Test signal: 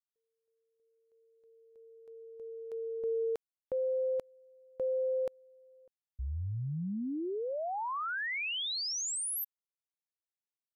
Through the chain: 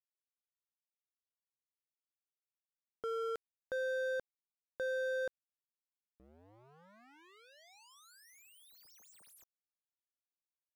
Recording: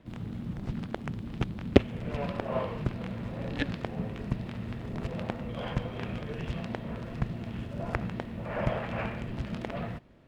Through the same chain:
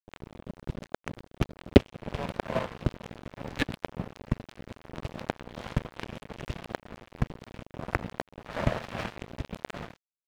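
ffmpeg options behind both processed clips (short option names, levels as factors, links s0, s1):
-af "acontrast=46,aeval=exprs='sgn(val(0))*max(abs(val(0))-0.0447,0)':c=same"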